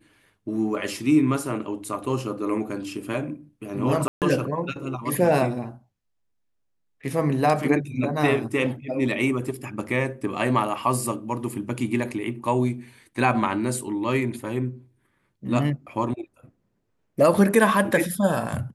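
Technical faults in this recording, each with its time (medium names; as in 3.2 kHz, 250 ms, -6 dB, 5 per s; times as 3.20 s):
4.08–4.22 s: dropout 138 ms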